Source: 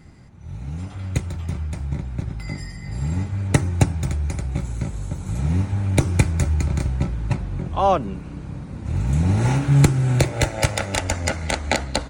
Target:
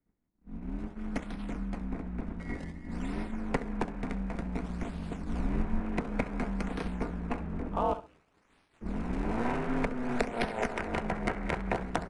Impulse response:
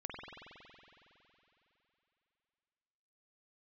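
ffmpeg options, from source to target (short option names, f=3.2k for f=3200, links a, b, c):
-filter_complex "[0:a]agate=range=-33dB:threshold=-27dB:ratio=3:detection=peak,asettb=1/sr,asplit=3[a][b][c];[a]atrim=end=7.934[d];[b]atrim=start=7.93:end=8.81,asetpts=PTS-STARTPTS,afade=t=in:d=0.004:c=qsin,afade=t=out:st=0.876:d=0.004:c=qsin,aderivative[e];[c]atrim=start=8.806[f];[d][e]acrossfade=d=0.004:c1=hsin:c2=qsin[g];[g][f]acrossfade=d=0.004:c1=qsin:c2=hsin,aecho=1:1:66|132:0.178|0.032,acrossover=split=330|3300[h][i][j];[h]acompressor=threshold=-31dB:ratio=4[k];[i]acompressor=threshold=-26dB:ratio=4[l];[j]acompressor=threshold=-37dB:ratio=4[m];[k][l][m]amix=inputs=3:normalize=0,acrossover=split=100|2500[n][o][p];[p]acrusher=samples=30:mix=1:aa=0.000001:lfo=1:lforange=48:lforate=0.55[q];[n][o][q]amix=inputs=3:normalize=0,aeval=exprs='val(0)*sin(2*PI*120*n/s)':c=same,asettb=1/sr,asplit=3[r][s][t];[r]atrim=end=5.174[u];[s]atrim=start=5.17:end=5.8,asetpts=PTS-STARTPTS,afade=t=in:d=0.004:c=qsin,afade=t=out:st=0.626:d=0.004:c=qsin,asubboost=boost=9:cutoff=210[v];[t]atrim=start=5.796[w];[u][v]acrossfade=d=0.004:c1=hsin:c2=qsin[x];[x][w]acrossfade=d=0.004:c1=qsin:c2=hsin,aresample=22050,aresample=44100"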